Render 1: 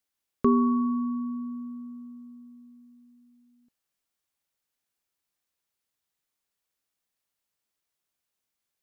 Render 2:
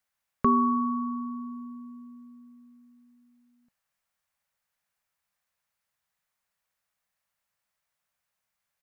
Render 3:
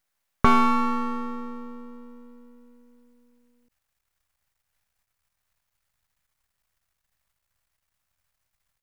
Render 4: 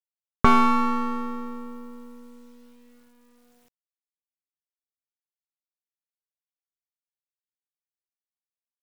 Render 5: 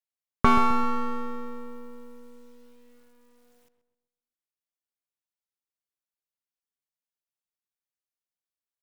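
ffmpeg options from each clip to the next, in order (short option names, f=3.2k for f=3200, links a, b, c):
-af "firequalizer=gain_entry='entry(190,0);entry(320,-14);entry(550,1);entry(1000,3);entry(1800,4);entry(3200,-3)':delay=0.05:min_phase=1,volume=2.5dB"
-af "asubboost=boost=8.5:cutoff=96,aeval=exprs='max(val(0),0)':c=same,volume=8.5dB"
-af "acrusher=bits=9:mix=0:aa=0.000001,volume=1dB"
-filter_complex "[0:a]asplit=2[a][b];[b]adelay=130,lowpass=f=1.9k:p=1,volume=-10dB,asplit=2[c][d];[d]adelay=130,lowpass=f=1.9k:p=1,volume=0.43,asplit=2[e][f];[f]adelay=130,lowpass=f=1.9k:p=1,volume=0.43,asplit=2[g][h];[h]adelay=130,lowpass=f=1.9k:p=1,volume=0.43,asplit=2[i][j];[j]adelay=130,lowpass=f=1.9k:p=1,volume=0.43[k];[a][c][e][g][i][k]amix=inputs=6:normalize=0,volume=-2.5dB"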